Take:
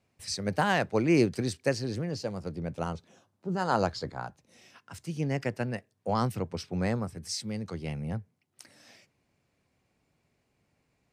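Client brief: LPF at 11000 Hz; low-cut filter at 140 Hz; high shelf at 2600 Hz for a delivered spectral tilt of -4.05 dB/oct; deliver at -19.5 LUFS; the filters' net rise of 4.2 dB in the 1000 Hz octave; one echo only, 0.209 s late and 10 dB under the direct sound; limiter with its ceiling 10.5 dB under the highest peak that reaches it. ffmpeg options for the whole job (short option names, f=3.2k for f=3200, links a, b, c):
-af "highpass=140,lowpass=11k,equalizer=f=1k:t=o:g=4.5,highshelf=f=2.6k:g=7.5,alimiter=limit=-17.5dB:level=0:latency=1,aecho=1:1:209:0.316,volume=12.5dB"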